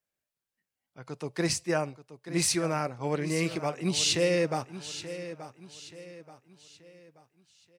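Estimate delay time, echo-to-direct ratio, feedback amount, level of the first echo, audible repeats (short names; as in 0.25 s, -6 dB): 0.88 s, -12.0 dB, 40%, -13.0 dB, 3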